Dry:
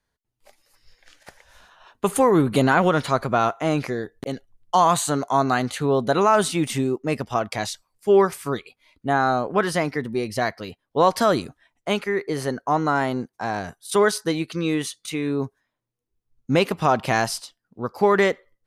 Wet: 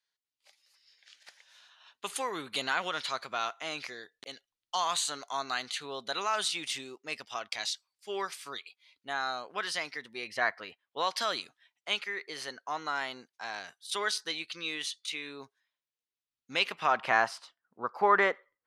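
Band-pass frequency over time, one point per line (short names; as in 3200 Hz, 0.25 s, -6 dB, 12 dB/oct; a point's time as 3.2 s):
band-pass, Q 1.2
10.07 s 3900 Hz
10.52 s 1400 Hz
11.07 s 3500 Hz
16.56 s 3500 Hz
17.17 s 1300 Hz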